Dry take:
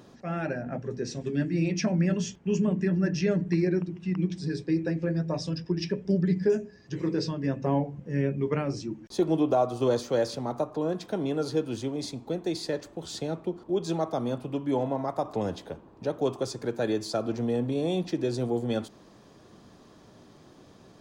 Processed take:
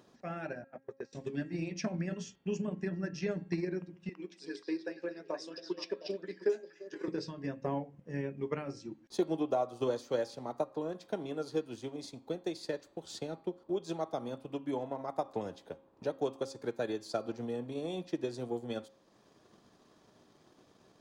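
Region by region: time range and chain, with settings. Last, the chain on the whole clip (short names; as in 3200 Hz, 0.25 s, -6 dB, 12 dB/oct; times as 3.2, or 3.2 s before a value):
0.64–1.13 gate -33 dBFS, range -18 dB + LPF 3800 Hz 6 dB/oct + low shelf 340 Hz -10 dB
4.09–7.08 HPF 290 Hz 24 dB/oct + delay with a stepping band-pass 0.237 s, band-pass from 3600 Hz, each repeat -1.4 oct, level -1 dB
whole clip: transient shaper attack +6 dB, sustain -4 dB; low shelf 220 Hz -8.5 dB; de-hum 270.1 Hz, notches 17; gain -8 dB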